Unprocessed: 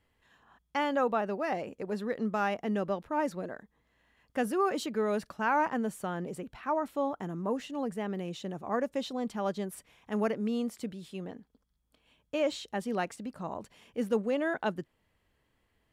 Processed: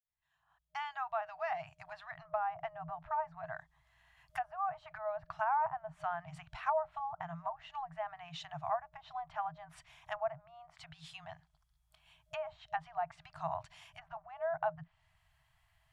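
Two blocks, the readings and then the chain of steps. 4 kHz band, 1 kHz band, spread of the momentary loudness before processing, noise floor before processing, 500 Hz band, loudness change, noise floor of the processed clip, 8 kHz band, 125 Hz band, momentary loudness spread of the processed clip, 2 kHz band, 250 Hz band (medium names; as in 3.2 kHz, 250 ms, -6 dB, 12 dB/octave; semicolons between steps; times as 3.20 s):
-8.5 dB, -2.5 dB, 12 LU, -75 dBFS, -9.0 dB, -6.5 dB, -77 dBFS, under -15 dB, -10.0 dB, 16 LU, -7.0 dB, under -25 dB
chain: fade-in on the opening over 2.76 s; low-pass that closes with the level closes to 720 Hz, closed at -28 dBFS; FFT band-reject 170–620 Hz; trim +2.5 dB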